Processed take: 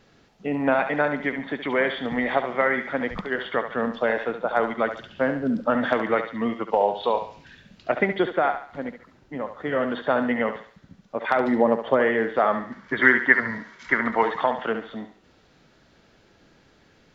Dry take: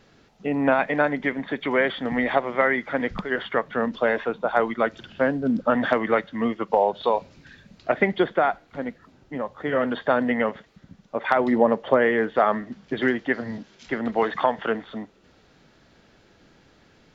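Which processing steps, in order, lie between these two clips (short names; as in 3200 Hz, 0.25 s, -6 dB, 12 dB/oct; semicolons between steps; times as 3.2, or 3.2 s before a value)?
6.67–7.91 bell 2900 Hz +5.5 dB 0.45 oct; 12.71–14.22 spectral gain 900–2300 Hz +12 dB; on a send: thinning echo 70 ms, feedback 40%, high-pass 400 Hz, level -8 dB; on the sum: gain -1.5 dB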